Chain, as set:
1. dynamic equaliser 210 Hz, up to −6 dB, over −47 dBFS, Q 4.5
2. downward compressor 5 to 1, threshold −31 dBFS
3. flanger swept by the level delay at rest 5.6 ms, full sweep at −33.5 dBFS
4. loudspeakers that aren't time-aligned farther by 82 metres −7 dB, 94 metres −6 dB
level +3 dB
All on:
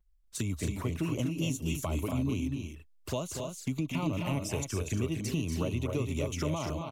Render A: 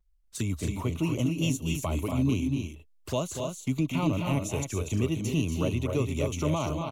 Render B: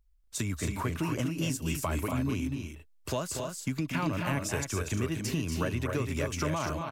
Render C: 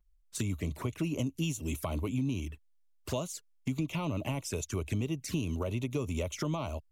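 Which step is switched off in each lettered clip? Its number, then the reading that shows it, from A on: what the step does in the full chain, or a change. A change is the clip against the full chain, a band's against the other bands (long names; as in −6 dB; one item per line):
2, average gain reduction 3.0 dB
3, 2 kHz band +4.5 dB
4, echo-to-direct ratio −3.5 dB to none audible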